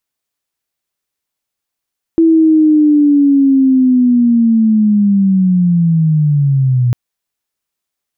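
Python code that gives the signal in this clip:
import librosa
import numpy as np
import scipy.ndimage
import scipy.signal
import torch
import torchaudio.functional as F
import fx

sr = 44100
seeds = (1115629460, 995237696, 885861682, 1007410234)

y = fx.chirp(sr, length_s=4.75, from_hz=330.0, to_hz=120.0, law='linear', from_db=-5.0, to_db=-8.5)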